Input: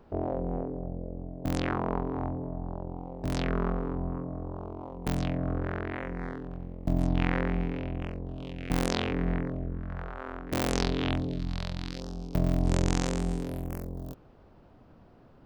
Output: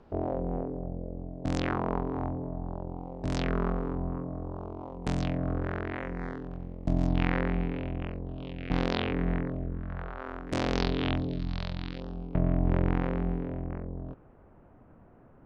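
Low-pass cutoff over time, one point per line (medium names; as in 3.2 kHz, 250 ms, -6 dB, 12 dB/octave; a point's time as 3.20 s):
low-pass 24 dB/octave
6.78 s 8 kHz
7.70 s 4.2 kHz
10.06 s 4.2 kHz
10.49 s 11 kHz
10.64 s 4.8 kHz
11.66 s 4.8 kHz
12.44 s 2.2 kHz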